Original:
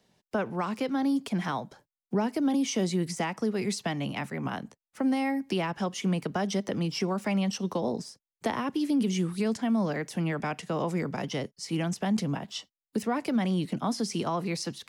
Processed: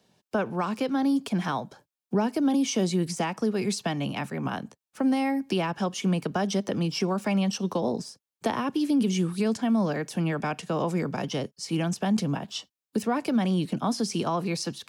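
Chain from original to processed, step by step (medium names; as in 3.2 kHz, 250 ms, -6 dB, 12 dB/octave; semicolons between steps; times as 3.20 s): high-pass 62 Hz; band-stop 2 kHz, Q 8.5; trim +2.5 dB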